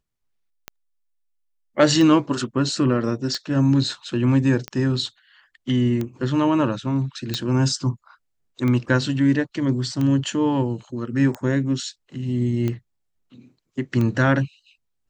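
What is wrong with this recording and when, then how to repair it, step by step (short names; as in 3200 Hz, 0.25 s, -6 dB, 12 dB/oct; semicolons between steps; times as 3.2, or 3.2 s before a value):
tick 45 rpm -14 dBFS
7.34 pop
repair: de-click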